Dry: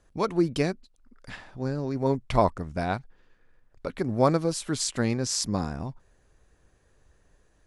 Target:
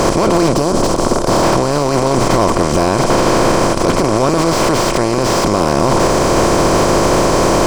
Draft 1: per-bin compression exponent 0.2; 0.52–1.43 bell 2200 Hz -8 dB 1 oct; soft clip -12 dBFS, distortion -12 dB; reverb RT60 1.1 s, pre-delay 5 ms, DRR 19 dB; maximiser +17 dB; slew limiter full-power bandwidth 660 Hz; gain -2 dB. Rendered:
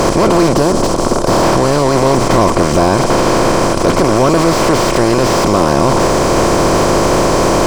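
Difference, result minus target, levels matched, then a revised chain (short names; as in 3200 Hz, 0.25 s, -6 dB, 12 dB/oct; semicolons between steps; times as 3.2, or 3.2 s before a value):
soft clip: distortion +13 dB
per-bin compression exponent 0.2; 0.52–1.43 bell 2200 Hz -8 dB 1 oct; soft clip -2.5 dBFS, distortion -25 dB; reverb RT60 1.1 s, pre-delay 5 ms, DRR 19 dB; maximiser +17 dB; slew limiter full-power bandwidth 660 Hz; gain -2 dB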